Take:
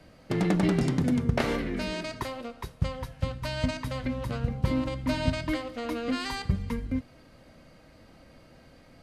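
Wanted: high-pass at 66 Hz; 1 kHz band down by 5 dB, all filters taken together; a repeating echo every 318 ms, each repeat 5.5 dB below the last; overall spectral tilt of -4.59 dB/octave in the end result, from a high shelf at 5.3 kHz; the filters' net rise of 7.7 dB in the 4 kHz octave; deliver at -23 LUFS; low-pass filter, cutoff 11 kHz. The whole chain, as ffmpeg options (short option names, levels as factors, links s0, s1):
-af "highpass=66,lowpass=11000,equalizer=f=1000:t=o:g=-7,equalizer=f=4000:t=o:g=8.5,highshelf=f=5300:g=3.5,aecho=1:1:318|636|954|1272|1590|1908|2226:0.531|0.281|0.149|0.079|0.0419|0.0222|0.0118,volume=1.88"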